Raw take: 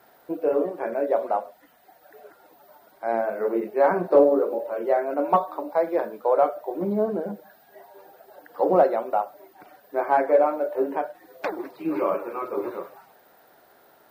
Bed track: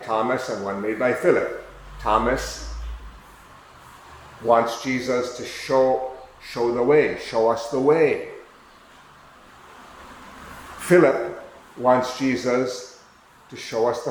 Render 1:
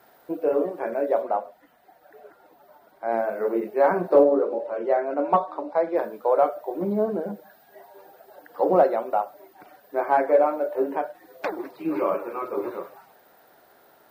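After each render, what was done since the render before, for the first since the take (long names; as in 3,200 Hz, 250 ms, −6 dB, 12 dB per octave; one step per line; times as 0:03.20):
0:01.22–0:03.12: high-shelf EQ 3,200 Hz −7.5 dB
0:04.23–0:05.96: high-frequency loss of the air 72 metres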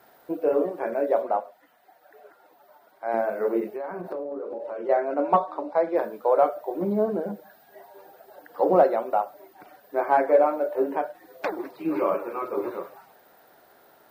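0:01.40–0:03.14: low-shelf EQ 310 Hz −11 dB
0:03.74–0:04.89: downward compressor 12 to 1, threshold −29 dBFS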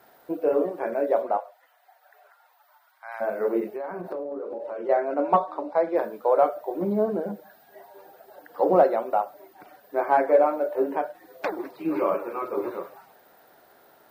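0:01.37–0:03.20: high-pass filter 510 Hz → 1,100 Hz 24 dB per octave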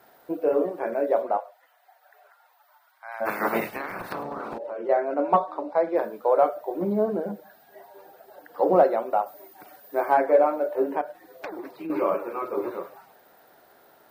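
0:03.25–0:04.57: ceiling on every frequency bin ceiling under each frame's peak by 29 dB
0:09.26–0:10.14: high-shelf EQ 5,400 Hz +10 dB
0:11.01–0:11.90: downward compressor 4 to 1, threshold −32 dBFS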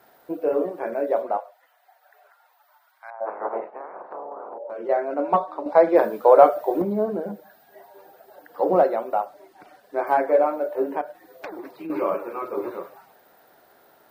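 0:03.10–0:04.70: flat-topped band-pass 650 Hz, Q 1.1
0:05.66–0:06.82: clip gain +7.5 dB
0:09.26–0:10.07: high-frequency loss of the air 55 metres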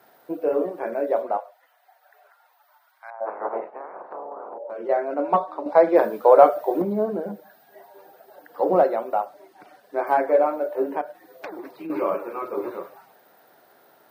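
high-pass filter 100 Hz
notch filter 7,300 Hz, Q 19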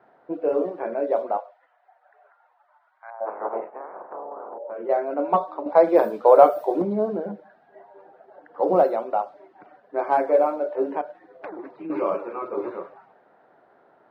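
low-pass that shuts in the quiet parts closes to 1,500 Hz, open at −14 dBFS
dynamic equaliser 1,800 Hz, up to −5 dB, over −43 dBFS, Q 2.4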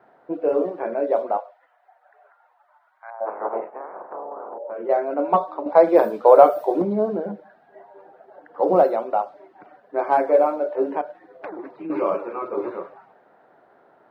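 level +2 dB
brickwall limiter −1 dBFS, peak gain reduction 1.5 dB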